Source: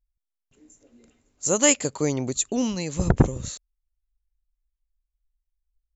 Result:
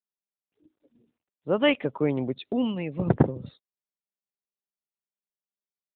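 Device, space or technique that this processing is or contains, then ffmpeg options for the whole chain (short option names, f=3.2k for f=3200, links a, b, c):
mobile call with aggressive noise cancelling: -af "highpass=120,afftdn=nr=34:nf=-44" -ar 8000 -c:a libopencore_amrnb -b:a 12200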